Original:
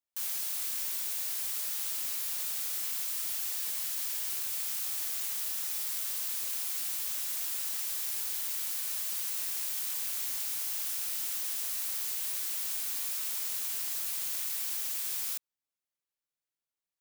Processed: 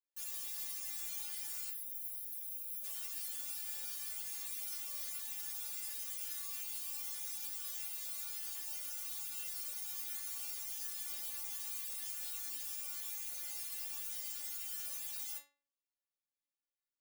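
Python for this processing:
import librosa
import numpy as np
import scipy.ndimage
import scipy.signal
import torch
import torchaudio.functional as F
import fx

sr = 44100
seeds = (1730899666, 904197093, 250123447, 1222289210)

y = fx.spec_box(x, sr, start_s=1.69, length_s=1.15, low_hz=560.0, high_hz=9900.0, gain_db=-15)
y = fx.stiff_resonator(y, sr, f0_hz=280.0, decay_s=0.4, stiffness=0.002)
y = y * librosa.db_to_amplitude(6.5)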